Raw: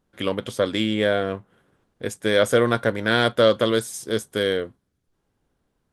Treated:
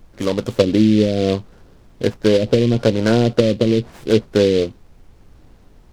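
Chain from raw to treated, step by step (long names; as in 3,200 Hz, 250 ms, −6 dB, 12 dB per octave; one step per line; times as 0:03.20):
running median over 5 samples
soft clipping −9.5 dBFS, distortion −19 dB
tilt shelving filter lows +6 dB, about 1,300 Hz
automatic gain control gain up to 14 dB
treble cut that deepens with the level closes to 300 Hz, closed at −7 dBFS
background noise brown −45 dBFS
short delay modulated by noise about 3,100 Hz, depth 0.053 ms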